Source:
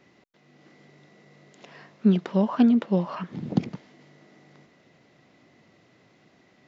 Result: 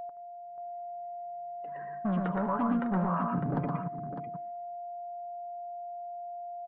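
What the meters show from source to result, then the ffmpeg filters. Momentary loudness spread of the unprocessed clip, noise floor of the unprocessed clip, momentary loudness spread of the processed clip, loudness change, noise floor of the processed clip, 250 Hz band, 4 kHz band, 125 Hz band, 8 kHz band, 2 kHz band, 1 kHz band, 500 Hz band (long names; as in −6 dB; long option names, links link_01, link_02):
13 LU, −61 dBFS, 12 LU, −10.5 dB, −45 dBFS, −8.5 dB, below −15 dB, −4.0 dB, can't be measured, 0.0 dB, +5.5 dB, −3.0 dB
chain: -filter_complex "[0:a]agate=range=-12dB:threshold=-49dB:ratio=16:detection=peak,afftdn=noise_reduction=17:noise_floor=-43,acrossover=split=190|840[link_01][link_02][link_03];[link_01]acompressor=threshold=-27dB:ratio=4[link_04];[link_02]acompressor=threshold=-33dB:ratio=4[link_05];[link_03]acompressor=threshold=-41dB:ratio=4[link_06];[link_04][link_05][link_06]amix=inputs=3:normalize=0,asplit=2[link_07][link_08];[link_08]alimiter=level_in=2dB:limit=-24dB:level=0:latency=1:release=18,volume=-2dB,volume=-2dB[link_09];[link_07][link_09]amix=inputs=2:normalize=0,flanger=delay=5.3:depth=1.9:regen=44:speed=1:shape=triangular,aeval=exprs='val(0)+0.0112*sin(2*PI*700*n/s)':channel_layout=same,volume=27.5dB,asoftclip=hard,volume=-27.5dB,lowpass=frequency=1400:width_type=q:width=2.2,asplit=2[link_10][link_11];[link_11]aecho=0:1:118|125|194|604:0.708|0.224|0.178|0.376[link_12];[link_10][link_12]amix=inputs=2:normalize=0"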